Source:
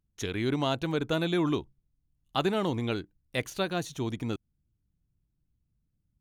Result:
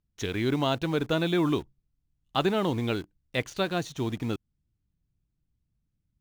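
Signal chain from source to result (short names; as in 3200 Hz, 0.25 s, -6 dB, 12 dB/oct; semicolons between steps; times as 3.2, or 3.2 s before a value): LPF 6500 Hz; in parallel at -7.5 dB: bit-crush 7-bit; on the sum: gain -1 dB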